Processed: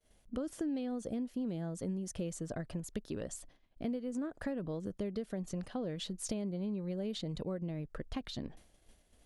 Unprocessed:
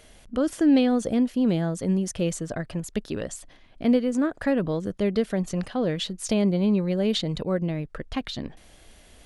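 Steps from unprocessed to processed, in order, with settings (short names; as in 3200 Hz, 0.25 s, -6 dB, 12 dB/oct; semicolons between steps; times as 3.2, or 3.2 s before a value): expander -43 dBFS; bell 2300 Hz -5 dB 2.5 oct; compressor 6:1, threshold -29 dBFS, peak gain reduction 13 dB; gain -5.5 dB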